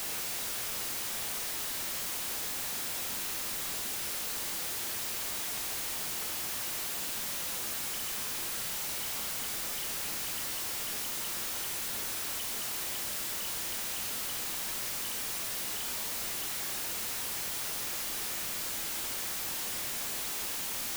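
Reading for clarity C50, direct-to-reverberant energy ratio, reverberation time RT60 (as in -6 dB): 10.5 dB, 6.5 dB, 0.65 s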